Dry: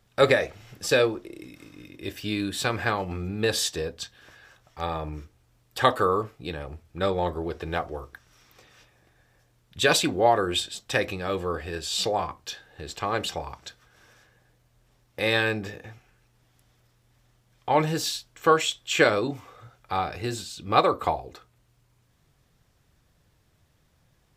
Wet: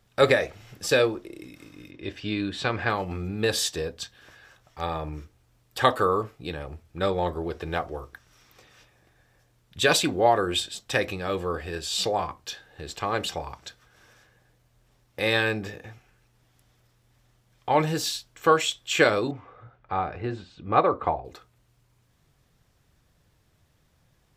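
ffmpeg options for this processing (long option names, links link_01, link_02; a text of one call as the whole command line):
ffmpeg -i in.wav -filter_complex "[0:a]asettb=1/sr,asplit=3[link_01][link_02][link_03];[link_01]atrim=end=1.914[link_04];[link_02]atrim=start=1.91:end=2.9,asetpts=PTS-STARTPTS,afade=type=in:duration=0.004:curve=qsin,afade=type=out:start_time=0.986:duration=0.004:curve=qsin,lowpass=4200[link_05];[link_03]atrim=start=2.896[link_06];[link_04][link_05]acrossfade=duration=0.004:curve1=hsin:curve2=qsin[link_07];[link_07][link_06]acrossfade=duration=0.004:curve1=qsin:curve2=hsin,asettb=1/sr,asplit=3[link_08][link_09][link_10];[link_08]atrim=end=19.314[link_11];[link_09]atrim=start=19.31:end=21.25,asetpts=PTS-STARTPTS,afade=type=in:duration=0.004:curve=qsin,afade=type=out:start_time=1.936:duration=0.004:curve=qsin,lowpass=1900[link_12];[link_10]atrim=start=21.246[link_13];[link_11][link_12]acrossfade=duration=0.004:curve1=hsin:curve2=qsin[link_14];[link_14][link_13]acrossfade=duration=0.004:curve1=qsin:curve2=hsin" out.wav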